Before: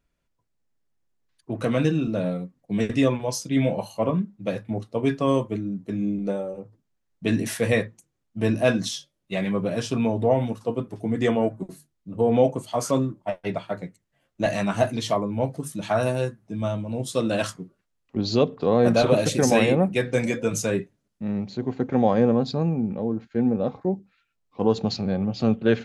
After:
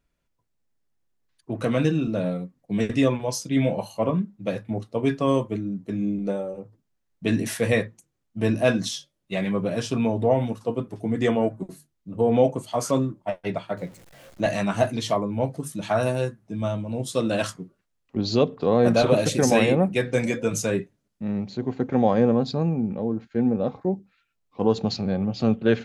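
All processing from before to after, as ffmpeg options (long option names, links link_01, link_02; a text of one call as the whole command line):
ffmpeg -i in.wav -filter_complex "[0:a]asettb=1/sr,asplit=3[link_01][link_02][link_03];[link_01]atrim=end=13.774[link_04];[link_02]atrim=start=13.77:end=14.41,asetpts=PTS-STARTPTS,afade=type=in:duration=0.004:curve=qsin,afade=type=out:start_time=0.636:duration=0.004:curve=qsin,aeval=exprs='val(0)+0.5*0.00562*sgn(val(0))':channel_layout=same,equalizer=frequency=540:width_type=o:width=0.44:gain=7[link_05];[link_03]atrim=start=14.406[link_06];[link_04][link_05]acrossfade=duration=0.004:curve1=hsin:curve2=qsin[link_07];[link_07][link_06]acrossfade=duration=0.004:curve1=qsin:curve2=hsin" out.wav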